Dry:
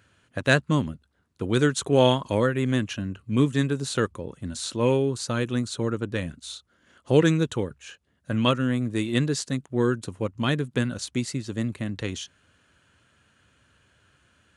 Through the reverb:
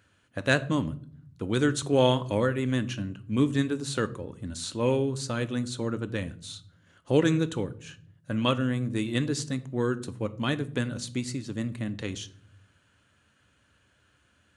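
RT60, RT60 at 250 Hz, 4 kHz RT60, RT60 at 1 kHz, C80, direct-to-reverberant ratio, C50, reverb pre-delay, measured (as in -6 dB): 0.55 s, 1.1 s, 0.35 s, 0.45 s, 21.5 dB, 12.0 dB, 18.0 dB, 3 ms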